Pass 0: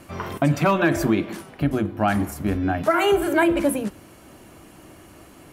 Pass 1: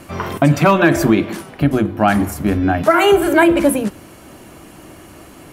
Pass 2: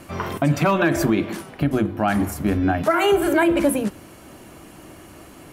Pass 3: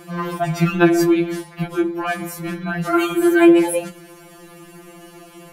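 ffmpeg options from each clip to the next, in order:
-af "bandreject=f=50:t=h:w=6,bandreject=f=100:t=h:w=6,volume=7dB"
-af "alimiter=limit=-5.5dB:level=0:latency=1:release=125,volume=-3.5dB"
-af "afftfilt=real='re*2.83*eq(mod(b,8),0)':imag='im*2.83*eq(mod(b,8),0)':win_size=2048:overlap=0.75,volume=3.5dB"

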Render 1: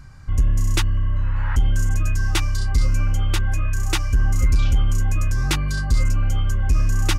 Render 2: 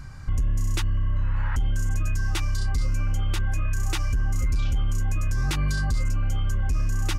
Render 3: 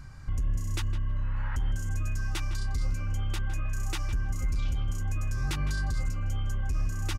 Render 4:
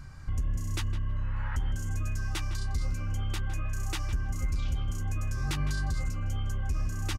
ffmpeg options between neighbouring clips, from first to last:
-af "alimiter=limit=-21dB:level=0:latency=1:release=109,volume=3dB"
-filter_complex "[0:a]asplit=2[a][b];[b]adelay=159,lowpass=f=3k:p=1,volume=-10.5dB,asplit=2[c][d];[d]adelay=159,lowpass=f=3k:p=1,volume=0.17[e];[a][c][e]amix=inputs=3:normalize=0,volume=-5.5dB"
-filter_complex "[0:a]asplit=2[a][b];[b]adelay=13,volume=-11.5dB[c];[a][c]amix=inputs=2:normalize=0"

